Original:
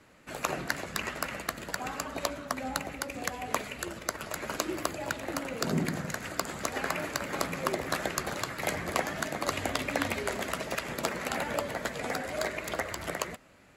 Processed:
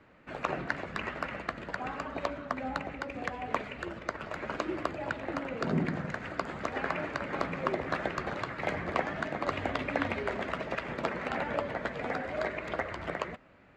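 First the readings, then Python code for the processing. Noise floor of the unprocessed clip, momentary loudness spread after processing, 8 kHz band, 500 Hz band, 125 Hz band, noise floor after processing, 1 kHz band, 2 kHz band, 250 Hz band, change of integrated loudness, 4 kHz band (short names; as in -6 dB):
-48 dBFS, 6 LU, -19.5 dB, 0.0 dB, 0.0 dB, -49 dBFS, 0.0 dB, -1.0 dB, 0.0 dB, -1.5 dB, -7.5 dB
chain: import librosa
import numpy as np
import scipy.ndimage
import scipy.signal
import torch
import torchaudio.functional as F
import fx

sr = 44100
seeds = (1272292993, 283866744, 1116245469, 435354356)

y = scipy.signal.sosfilt(scipy.signal.butter(2, 2500.0, 'lowpass', fs=sr, output='sos'), x)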